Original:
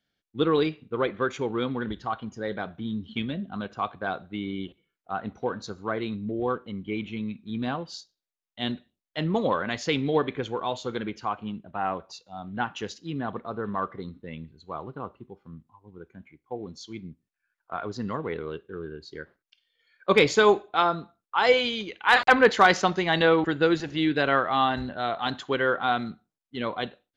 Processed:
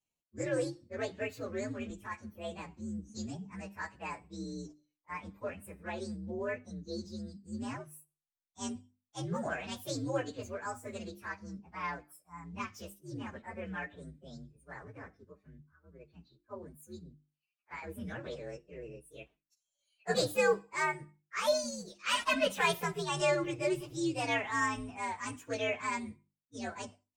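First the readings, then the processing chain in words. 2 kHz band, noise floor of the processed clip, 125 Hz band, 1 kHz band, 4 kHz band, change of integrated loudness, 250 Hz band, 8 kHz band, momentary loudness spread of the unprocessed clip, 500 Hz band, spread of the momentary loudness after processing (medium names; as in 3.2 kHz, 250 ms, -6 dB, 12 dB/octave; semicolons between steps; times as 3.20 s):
-10.0 dB, under -85 dBFS, -8.5 dB, -12.0 dB, -9.5 dB, -10.0 dB, -10.5 dB, no reading, 18 LU, -9.5 dB, 19 LU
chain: frequency axis rescaled in octaves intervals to 128%; hum notches 50/100/150/200/250/300/350 Hz; trim -7 dB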